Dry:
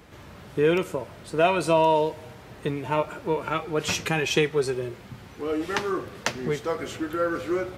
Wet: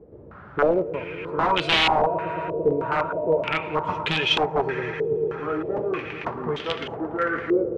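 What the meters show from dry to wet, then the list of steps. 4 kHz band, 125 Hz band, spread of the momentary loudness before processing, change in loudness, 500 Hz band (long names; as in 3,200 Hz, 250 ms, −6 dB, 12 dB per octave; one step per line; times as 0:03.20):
+7.5 dB, −1.5 dB, 13 LU, +2.0 dB, +1.0 dB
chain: echo that builds up and dies away 112 ms, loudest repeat 5, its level −16 dB
wrap-around overflow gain 15 dB
low-pass on a step sequencer 3.2 Hz 460–3,200 Hz
level −2 dB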